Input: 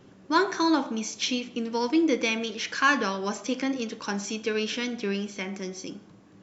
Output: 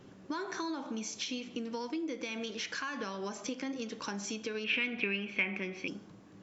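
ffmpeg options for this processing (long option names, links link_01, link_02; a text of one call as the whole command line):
ffmpeg -i in.wav -filter_complex "[0:a]alimiter=limit=-19dB:level=0:latency=1:release=162,acompressor=threshold=-34dB:ratio=4,asettb=1/sr,asplit=3[link_01][link_02][link_03];[link_01]atrim=end=4.644[link_04];[link_02]atrim=start=4.64:end=5.88,asetpts=PTS-STARTPTS,afade=type=in:duration=0.004:curve=qsin,afade=type=out:start_time=1.236:duration=0.004:curve=qsin,lowpass=frequency=2500:width_type=q:width=7.5[link_05];[link_03]atrim=start=5.876[link_06];[link_04][link_05]acrossfade=duration=0.004:curve1=hsin:curve2=qsin[link_07];[link_07][link_06]acrossfade=duration=0.004:curve1=qsin:curve2=hsin,volume=-1.5dB" out.wav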